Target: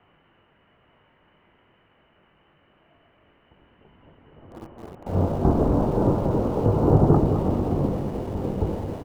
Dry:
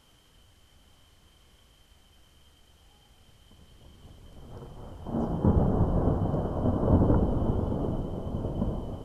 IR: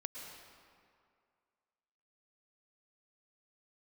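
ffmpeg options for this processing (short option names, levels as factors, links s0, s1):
-filter_complex "[0:a]asplit=2[s0][s1];[s1]adelay=21,volume=0.299[s2];[s0][s2]amix=inputs=2:normalize=0,highpass=f=220:t=q:w=0.5412,highpass=f=220:t=q:w=1.307,lowpass=f=2500:t=q:w=0.5176,lowpass=f=2500:t=q:w=0.7071,lowpass=f=2500:t=q:w=1.932,afreqshift=-140,aecho=1:1:214|428|642:0.282|0.0789|0.0221,asplit=2[s3][s4];[s4]aeval=exprs='val(0)*gte(abs(val(0)),0.00794)':c=same,volume=0.501[s5];[s3][s5]amix=inputs=2:normalize=0,volume=1.88"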